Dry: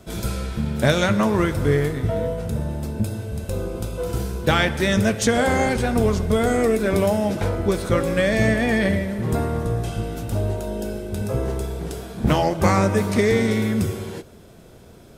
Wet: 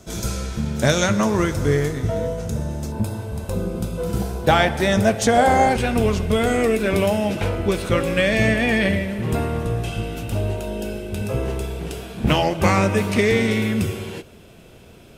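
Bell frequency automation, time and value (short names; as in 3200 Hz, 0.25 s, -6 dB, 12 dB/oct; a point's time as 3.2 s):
bell +10 dB 0.55 oct
6300 Hz
from 2.92 s 950 Hz
from 3.54 s 190 Hz
from 4.22 s 740 Hz
from 5.76 s 2700 Hz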